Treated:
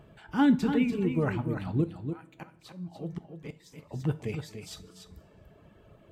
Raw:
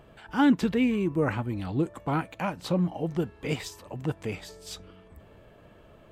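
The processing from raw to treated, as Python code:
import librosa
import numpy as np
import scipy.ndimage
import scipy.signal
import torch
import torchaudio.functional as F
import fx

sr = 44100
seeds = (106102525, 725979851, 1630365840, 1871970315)

y = fx.reverse_delay(x, sr, ms=192, wet_db=-14.0)
y = fx.peak_eq(y, sr, hz=150.0, db=7.5, octaves=1.6)
y = fx.auto_swell(y, sr, attack_ms=724.0, at=(1.84, 3.94))
y = fx.dereverb_blind(y, sr, rt60_s=1.1)
y = y + 10.0 ** (-8.0 / 20.0) * np.pad(y, (int(291 * sr / 1000.0), 0))[:len(y)]
y = fx.rev_double_slope(y, sr, seeds[0], early_s=0.32, late_s=2.3, knee_db=-20, drr_db=10.5)
y = y * 10.0 ** (-4.0 / 20.0)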